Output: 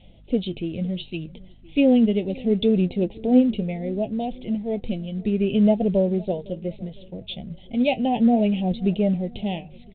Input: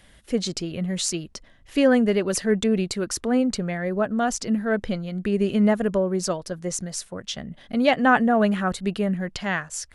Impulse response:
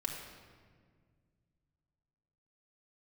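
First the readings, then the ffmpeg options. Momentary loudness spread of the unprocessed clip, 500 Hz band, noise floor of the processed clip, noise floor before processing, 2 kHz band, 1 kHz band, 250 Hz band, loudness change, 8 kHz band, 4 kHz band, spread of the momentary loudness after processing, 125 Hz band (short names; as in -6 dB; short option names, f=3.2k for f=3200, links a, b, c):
11 LU, -0.5 dB, -47 dBFS, -53 dBFS, -11.5 dB, -5.5 dB, +2.5 dB, +1.0 dB, under -40 dB, -4.0 dB, 15 LU, +2.5 dB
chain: -filter_complex "[0:a]aphaser=in_gain=1:out_gain=1:delay=1:decay=0.44:speed=0.33:type=triangular,bandreject=f=50:t=h:w=6,bandreject=f=100:t=h:w=6,bandreject=f=150:t=h:w=6,flanger=delay=5.6:depth=3.7:regen=61:speed=0.68:shape=sinusoidal,adynamicequalizer=threshold=0.02:dfrequency=360:dqfactor=2.3:tfrequency=360:tqfactor=2.3:attack=5:release=100:ratio=0.375:range=1.5:mode=cutabove:tftype=bell,asuperstop=centerf=1400:order=8:qfactor=0.89,aeval=exprs='val(0)+0.00178*(sin(2*PI*50*n/s)+sin(2*PI*2*50*n/s)/2+sin(2*PI*3*50*n/s)/3+sin(2*PI*4*50*n/s)/4+sin(2*PI*5*50*n/s)/5)':c=same,asplit=2[a][b];[b]adelay=508,lowpass=f=1.2k:p=1,volume=-22dB,asplit=2[c][d];[d]adelay=508,lowpass=f=1.2k:p=1,volume=0.49,asplit=2[e][f];[f]adelay=508,lowpass=f=1.2k:p=1,volume=0.49[g];[c][e][g]amix=inputs=3:normalize=0[h];[a][h]amix=inputs=2:normalize=0,volume=3.5dB" -ar 8000 -c:a pcm_mulaw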